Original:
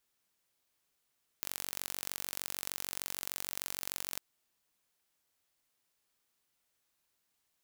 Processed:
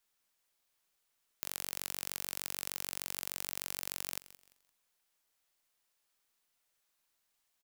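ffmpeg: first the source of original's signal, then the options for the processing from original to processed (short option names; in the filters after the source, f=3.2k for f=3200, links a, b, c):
-f lavfi -i "aevalsrc='0.355*eq(mod(n,946),0)*(0.5+0.5*eq(mod(n,1892),0))':d=2.75:s=44100"
-filter_complex "[0:a]acrossover=split=470[a][b];[a]aeval=exprs='max(val(0),0)':c=same[c];[c][b]amix=inputs=2:normalize=0,aecho=1:1:172|344|516:0.126|0.039|0.0121"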